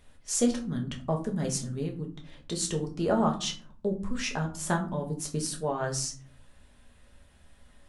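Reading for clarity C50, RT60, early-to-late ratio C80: 12.5 dB, 0.50 s, 17.0 dB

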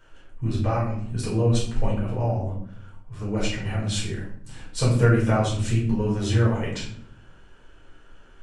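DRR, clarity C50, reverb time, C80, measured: -6.0 dB, 4.5 dB, 0.60 s, 8.5 dB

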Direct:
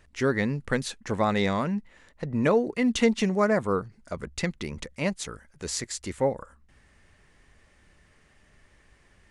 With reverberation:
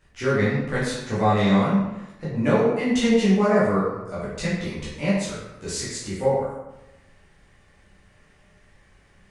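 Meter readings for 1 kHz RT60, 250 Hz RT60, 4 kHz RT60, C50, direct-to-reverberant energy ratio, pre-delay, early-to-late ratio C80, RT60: 1.0 s, 1.0 s, 0.70 s, 0.5 dB, -10.0 dB, 9 ms, 3.0 dB, 1.0 s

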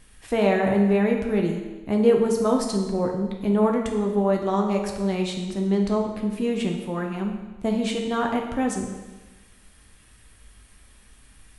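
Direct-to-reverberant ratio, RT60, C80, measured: 1.5 dB, 1.2 s, 6.5 dB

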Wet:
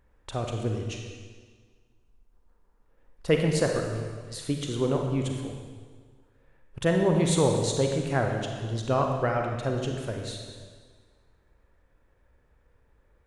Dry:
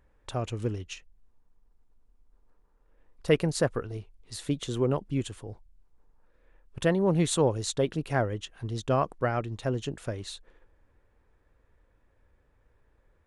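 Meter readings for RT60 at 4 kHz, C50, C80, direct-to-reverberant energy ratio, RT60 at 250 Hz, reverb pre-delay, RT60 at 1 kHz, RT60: 1.5 s, 3.0 dB, 4.5 dB, 2.0 dB, 1.7 s, 34 ms, 1.6 s, 1.6 s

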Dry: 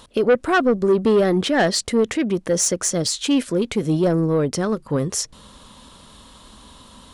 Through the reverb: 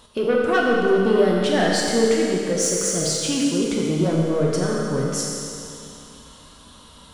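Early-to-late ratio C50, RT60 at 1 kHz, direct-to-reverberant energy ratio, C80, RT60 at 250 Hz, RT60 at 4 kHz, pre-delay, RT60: -1.0 dB, 2.6 s, -3.5 dB, 0.5 dB, 2.6 s, 2.6 s, 7 ms, 2.6 s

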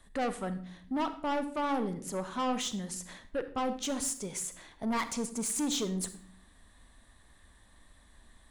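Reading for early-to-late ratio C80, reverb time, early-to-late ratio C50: 16.0 dB, 0.60 s, 12.5 dB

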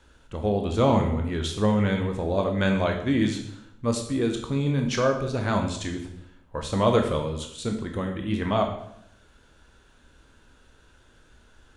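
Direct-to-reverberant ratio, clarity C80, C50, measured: 3.0 dB, 10.0 dB, 7.0 dB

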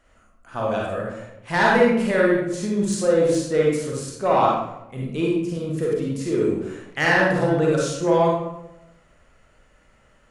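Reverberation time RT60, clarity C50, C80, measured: 0.90 s, -1.0 dB, 3.0 dB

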